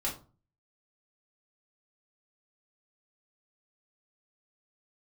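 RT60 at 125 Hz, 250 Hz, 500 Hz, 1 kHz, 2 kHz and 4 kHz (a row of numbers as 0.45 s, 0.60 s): 0.60 s, 0.50 s, 0.35 s, 0.35 s, 0.25 s, 0.25 s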